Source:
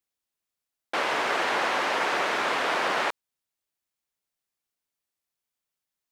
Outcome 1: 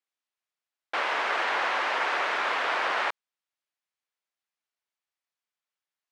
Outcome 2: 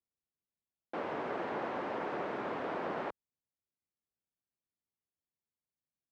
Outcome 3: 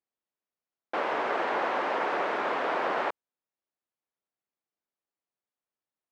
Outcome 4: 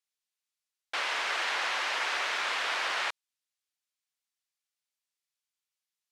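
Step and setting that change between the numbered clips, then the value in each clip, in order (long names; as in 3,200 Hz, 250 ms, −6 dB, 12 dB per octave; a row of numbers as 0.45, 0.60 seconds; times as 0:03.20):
resonant band-pass, frequency: 1,600, 120, 480, 4,400 Hertz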